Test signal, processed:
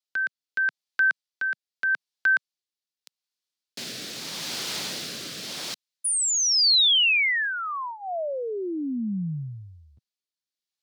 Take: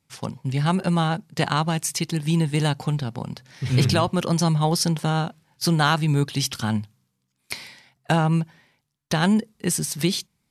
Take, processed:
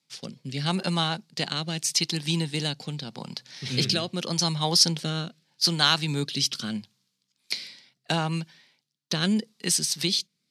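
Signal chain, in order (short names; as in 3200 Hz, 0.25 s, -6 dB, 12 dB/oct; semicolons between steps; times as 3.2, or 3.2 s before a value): rotary speaker horn 0.8 Hz; HPF 150 Hz 24 dB/oct; bell 4400 Hz +14 dB 1.5 oct; gain -4.5 dB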